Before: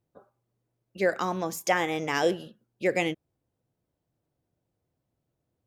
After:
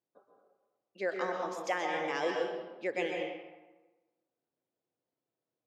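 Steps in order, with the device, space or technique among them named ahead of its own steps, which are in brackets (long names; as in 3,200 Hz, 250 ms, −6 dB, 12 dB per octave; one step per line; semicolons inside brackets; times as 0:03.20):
supermarket ceiling speaker (band-pass filter 300–5,400 Hz; convolution reverb RT60 1.2 s, pre-delay 117 ms, DRR 0.5 dB)
level −8.5 dB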